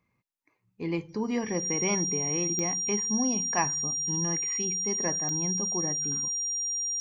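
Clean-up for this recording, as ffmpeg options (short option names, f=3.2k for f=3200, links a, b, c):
-af "adeclick=t=4,bandreject=f=5.7k:w=30"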